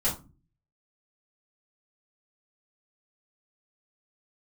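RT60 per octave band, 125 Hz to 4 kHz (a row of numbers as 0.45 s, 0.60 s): 0.70 s, 0.55 s, 0.35 s, 0.30 s, 0.25 s, 0.20 s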